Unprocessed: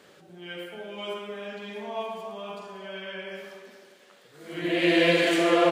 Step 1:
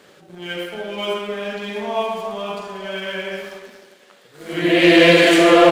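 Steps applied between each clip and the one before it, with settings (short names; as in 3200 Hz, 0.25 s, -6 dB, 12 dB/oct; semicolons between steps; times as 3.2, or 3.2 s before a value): sample leveller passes 1; gain +7 dB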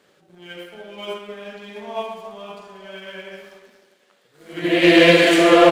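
upward expander 1.5:1, over -28 dBFS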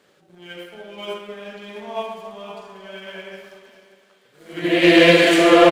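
feedback echo 0.589 s, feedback 31%, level -16.5 dB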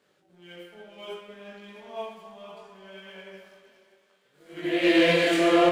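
chorus 0.64 Hz, delay 20 ms, depth 3.6 ms; gain -6 dB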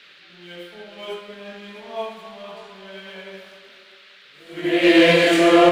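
band noise 1300–4100 Hz -56 dBFS; gain +6.5 dB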